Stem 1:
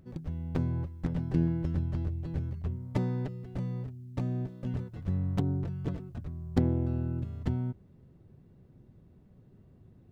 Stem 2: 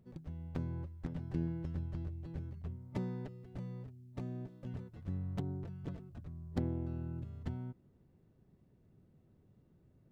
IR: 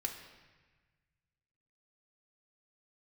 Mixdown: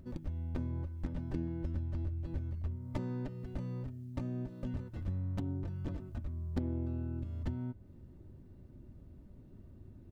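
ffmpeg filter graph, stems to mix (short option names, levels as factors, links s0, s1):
-filter_complex "[0:a]aecho=1:1:3.3:0.53,bandreject=f=107.2:t=h:w=4,bandreject=f=214.4:t=h:w=4,bandreject=f=321.6:t=h:w=4,bandreject=f=428.8:t=h:w=4,bandreject=f=536:t=h:w=4,bandreject=f=643.2:t=h:w=4,bandreject=f=750.4:t=h:w=4,bandreject=f=857.6:t=h:w=4,bandreject=f=964.8:t=h:w=4,bandreject=f=1072:t=h:w=4,bandreject=f=1179.2:t=h:w=4,bandreject=f=1286.4:t=h:w=4,bandreject=f=1393.6:t=h:w=4,bandreject=f=1500.8:t=h:w=4,bandreject=f=1608:t=h:w=4,bandreject=f=1715.2:t=h:w=4,bandreject=f=1822.4:t=h:w=4,bandreject=f=1929.6:t=h:w=4,bandreject=f=2036.8:t=h:w=4,bandreject=f=2144:t=h:w=4,bandreject=f=2251.2:t=h:w=4,bandreject=f=2358.4:t=h:w=4,bandreject=f=2465.6:t=h:w=4,bandreject=f=2572.8:t=h:w=4,bandreject=f=2680:t=h:w=4,bandreject=f=2787.2:t=h:w=4,bandreject=f=2894.4:t=h:w=4,bandreject=f=3001.6:t=h:w=4,bandreject=f=3108.8:t=h:w=4,bandreject=f=3216:t=h:w=4,bandreject=f=3323.2:t=h:w=4,bandreject=f=3430.4:t=h:w=4,bandreject=f=3537.6:t=h:w=4,volume=0.75[s0];[1:a]highpass=320,volume=1.12[s1];[s0][s1]amix=inputs=2:normalize=0,lowshelf=f=230:g=9,acompressor=threshold=0.0126:ratio=2.5"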